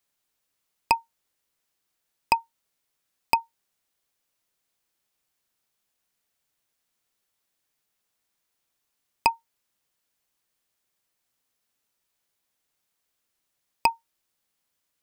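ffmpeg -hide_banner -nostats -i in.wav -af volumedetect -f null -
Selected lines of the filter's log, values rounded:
mean_volume: -36.7 dB
max_volume: -5.1 dB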